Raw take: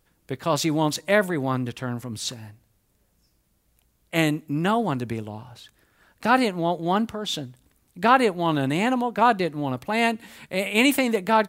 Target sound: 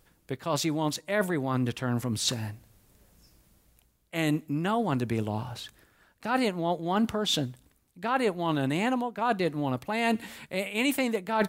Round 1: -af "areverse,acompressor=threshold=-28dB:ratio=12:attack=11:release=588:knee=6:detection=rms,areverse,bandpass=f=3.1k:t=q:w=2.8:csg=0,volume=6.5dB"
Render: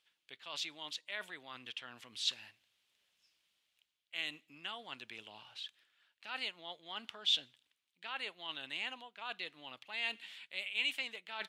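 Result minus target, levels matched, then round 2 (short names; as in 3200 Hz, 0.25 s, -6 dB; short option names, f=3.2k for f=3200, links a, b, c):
4000 Hz band +8.5 dB
-af "areverse,acompressor=threshold=-28dB:ratio=12:attack=11:release=588:knee=6:detection=rms,areverse,volume=6.5dB"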